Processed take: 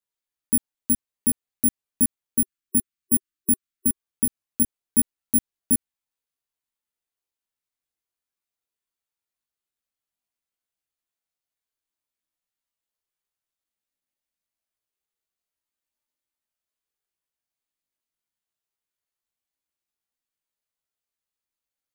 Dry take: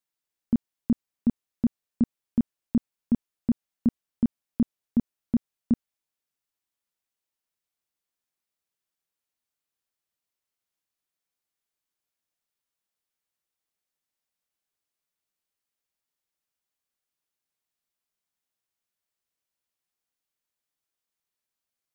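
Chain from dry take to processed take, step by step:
multi-voice chorus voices 6, 0.13 Hz, delay 18 ms, depth 2.4 ms
time-frequency box erased 0:02.39–0:03.94, 380–1,100 Hz
bad sample-rate conversion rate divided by 4×, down filtered, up zero stuff

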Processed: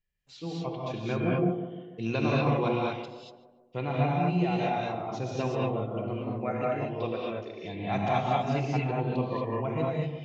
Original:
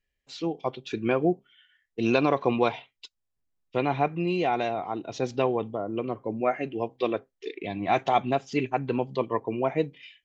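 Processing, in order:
low shelf with overshoot 210 Hz +6 dB, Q 1.5
tape delay 147 ms, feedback 61%, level −8 dB, low-pass 1,100 Hz
reverb whose tail is shaped and stops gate 260 ms rising, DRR −4 dB
level −8.5 dB

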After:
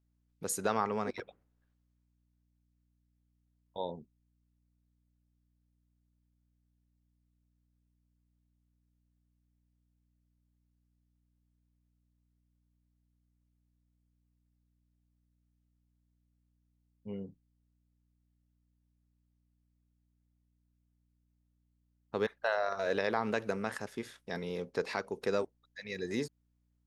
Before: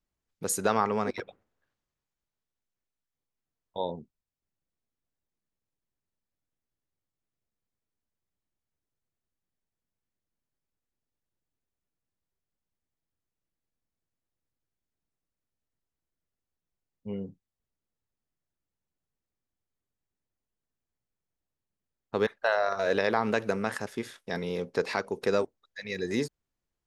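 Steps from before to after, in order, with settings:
mains hum 60 Hz, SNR 33 dB
level −5.5 dB

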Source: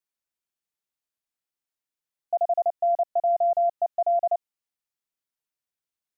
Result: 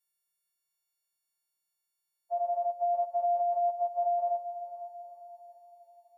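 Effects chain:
every partial snapped to a pitch grid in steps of 4 semitones
notch filter 450 Hz, Q 12
feedback delay with all-pass diffusion 472 ms, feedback 50%, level −11.5 dB
level −6.5 dB

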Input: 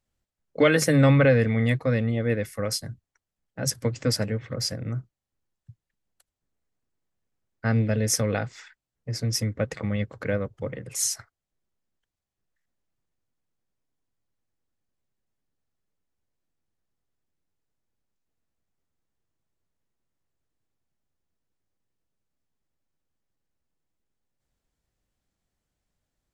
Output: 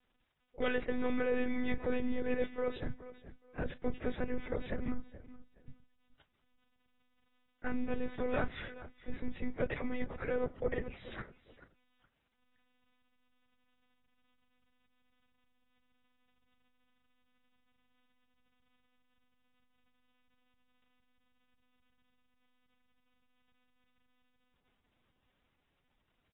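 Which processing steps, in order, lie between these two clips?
reversed playback
downward compressor 8 to 1, threshold −31 dBFS, peak gain reduction 17.5 dB
reversed playback
surface crackle 200 per second −61 dBFS
repeating echo 425 ms, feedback 23%, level −16 dB
on a send at −22.5 dB: convolution reverb RT60 0.85 s, pre-delay 4 ms
on the sum: one-pitch LPC vocoder at 8 kHz 250 Hz
level +1.5 dB
AAC 16 kbit/s 22,050 Hz

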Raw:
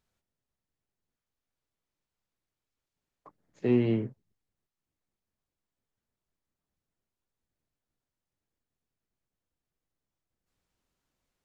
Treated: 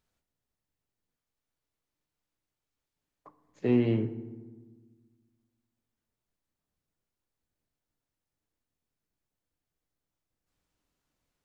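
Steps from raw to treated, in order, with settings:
feedback delay network reverb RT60 1.4 s, low-frequency decay 1.45×, high-frequency decay 0.55×, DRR 11.5 dB

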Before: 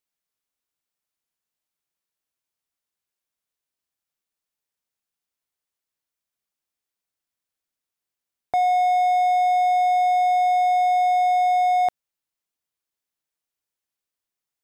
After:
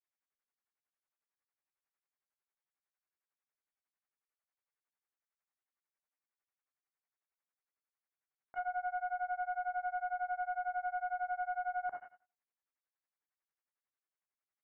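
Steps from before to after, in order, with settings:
on a send at −2 dB: convolution reverb RT60 0.35 s, pre-delay 8 ms
on the sum: brickwall limiter −22.5 dBFS, peak gain reduction 10 dB
single-tap delay 121 ms −17.5 dB
half-wave rectification
granular cloud 101 ms, grains 11 per second, spray 12 ms, pitch spread up and down by 0 semitones
high-pass filter 860 Hz 6 dB per octave
treble cut that deepens with the level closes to 1,200 Hz, closed at −36.5 dBFS
hard clipping −34 dBFS, distortion −22 dB
Butterworth low-pass 2,200 Hz 36 dB per octave
level +3.5 dB

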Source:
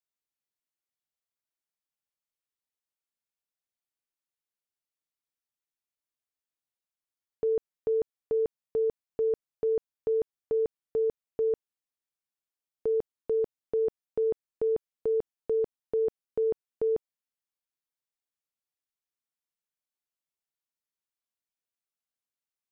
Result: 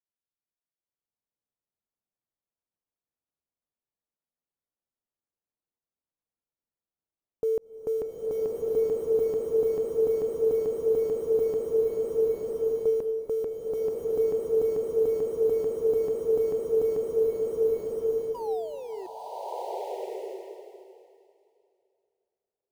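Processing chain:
sound drawn into the spectrogram fall, 0:18.34–0:19.07, 360–1,000 Hz −39 dBFS
low-pass that shuts in the quiet parts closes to 810 Hz, open at −24 dBFS
in parallel at −10 dB: bit reduction 7 bits
on the sum: slow-attack reverb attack 1,270 ms, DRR −6 dB
level −2 dB

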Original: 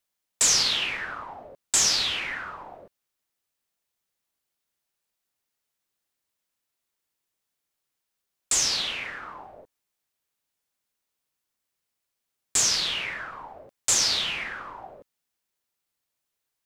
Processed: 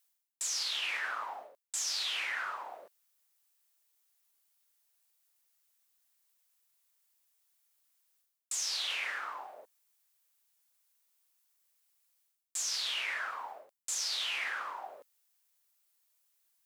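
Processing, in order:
high-pass filter 650 Hz 12 dB per octave
high-shelf EQ 6,600 Hz +10.5 dB
reversed playback
downward compressor 16 to 1, threshold −32 dBFS, peak gain reduction 21.5 dB
reversed playback

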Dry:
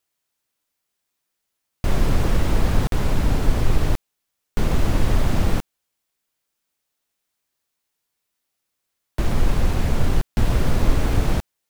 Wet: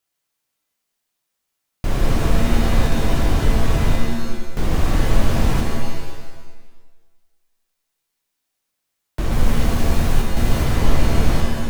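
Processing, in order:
0:09.32–0:10.64: high-shelf EQ 7,300 Hz +6 dB
reverb with rising layers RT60 1.2 s, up +7 semitones, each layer −2 dB, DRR 2 dB
level −1.5 dB

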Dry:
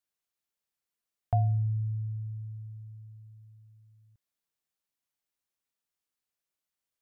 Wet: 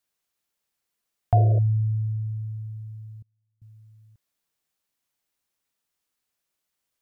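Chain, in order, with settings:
0:01.34–0:01.59: sound drawn into the spectrogram noise 320–700 Hz −41 dBFS
0:03.22–0:03.62: gate with flip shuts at −55 dBFS, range −30 dB
level +7.5 dB

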